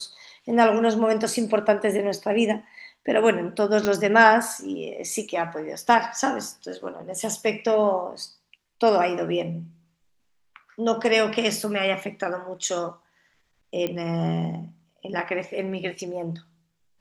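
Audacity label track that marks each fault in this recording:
3.850000	3.850000	pop -10 dBFS
13.870000	13.870000	pop -15 dBFS

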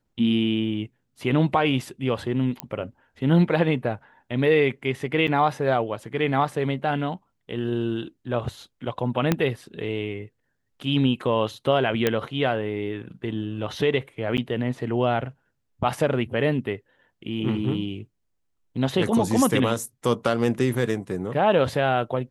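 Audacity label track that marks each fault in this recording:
2.600000	2.600000	pop -12 dBFS
5.270000	5.280000	gap 7.4 ms
9.320000	9.320000	pop -7 dBFS
12.070000	12.070000	pop -7 dBFS
14.370000	14.380000	gap 9 ms

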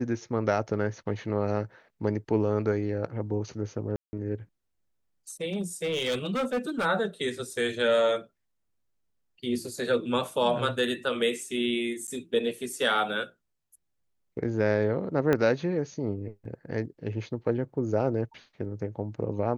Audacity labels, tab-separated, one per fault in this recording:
3.960000	4.130000	gap 0.17 s
5.530000	6.860000	clipped -24 dBFS
12.070000	12.080000	gap 9.6 ms
15.330000	15.330000	pop -12 dBFS

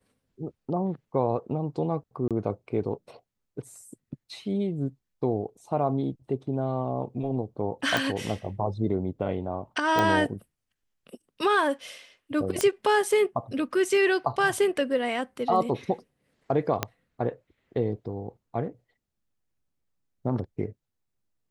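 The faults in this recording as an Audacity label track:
2.280000	2.310000	gap 27 ms
7.970000	7.970000	pop
9.990000	9.990000	pop -11 dBFS
12.610000	12.610000	pop -9 dBFS
16.830000	16.830000	pop -9 dBFS

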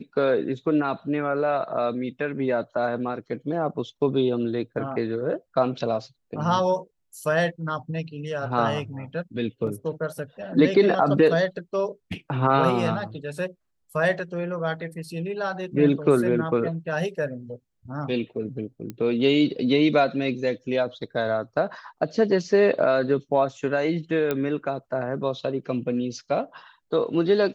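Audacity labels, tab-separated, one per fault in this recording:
9.670000	9.670000	gap 3.8 ms
18.900000	18.900000	pop -20 dBFS
24.310000	24.310000	pop -12 dBFS

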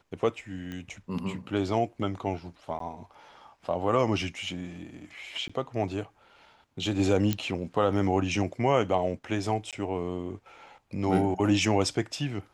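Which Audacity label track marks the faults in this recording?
0.720000	0.720000	pop -26 dBFS
2.790000	2.800000	gap
5.480000	5.500000	gap 15 ms
7.330000	7.330000	pop -12 dBFS
9.710000	9.730000	gap 17 ms

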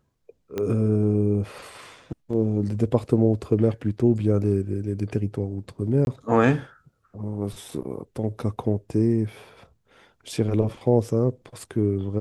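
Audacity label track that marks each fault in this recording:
0.580000	0.580000	pop -15 dBFS
6.050000	6.070000	gap 21 ms

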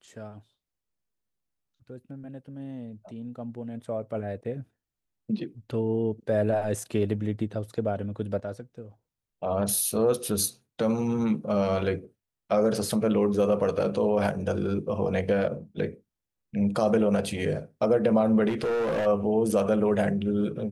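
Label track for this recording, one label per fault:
18.480000	19.070000	clipped -24 dBFS

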